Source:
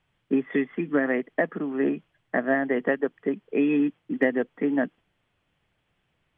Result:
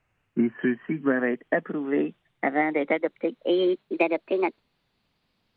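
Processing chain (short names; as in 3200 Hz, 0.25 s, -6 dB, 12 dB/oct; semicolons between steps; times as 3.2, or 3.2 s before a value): speed glide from 82% -> 147%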